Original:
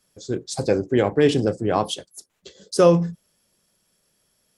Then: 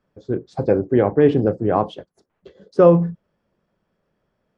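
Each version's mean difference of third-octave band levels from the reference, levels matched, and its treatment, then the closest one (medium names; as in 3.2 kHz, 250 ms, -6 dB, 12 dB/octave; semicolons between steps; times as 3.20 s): 4.0 dB: low-pass 1.4 kHz 12 dB/octave; trim +3 dB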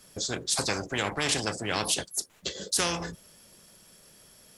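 12.5 dB: spectrum-flattening compressor 4:1; trim -8 dB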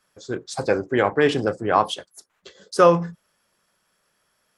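3.0 dB: peaking EQ 1.3 kHz +14 dB 2.1 oct; trim -5.5 dB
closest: third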